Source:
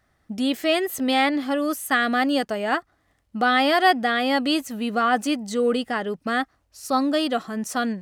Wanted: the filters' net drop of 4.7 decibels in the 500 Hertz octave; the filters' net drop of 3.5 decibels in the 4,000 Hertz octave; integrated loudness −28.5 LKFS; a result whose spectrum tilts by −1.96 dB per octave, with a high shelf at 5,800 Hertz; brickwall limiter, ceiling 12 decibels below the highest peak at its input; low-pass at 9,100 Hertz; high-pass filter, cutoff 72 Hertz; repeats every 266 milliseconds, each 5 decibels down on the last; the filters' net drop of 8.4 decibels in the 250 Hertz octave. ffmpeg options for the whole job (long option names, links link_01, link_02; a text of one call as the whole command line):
ffmpeg -i in.wav -af "highpass=72,lowpass=9100,equalizer=frequency=250:width_type=o:gain=-8.5,equalizer=frequency=500:width_type=o:gain=-4,equalizer=frequency=4000:width_type=o:gain=-7.5,highshelf=frequency=5800:gain=8.5,alimiter=limit=-19dB:level=0:latency=1,aecho=1:1:266|532|798|1064|1330|1596|1862:0.562|0.315|0.176|0.0988|0.0553|0.031|0.0173,volume=-0.5dB" out.wav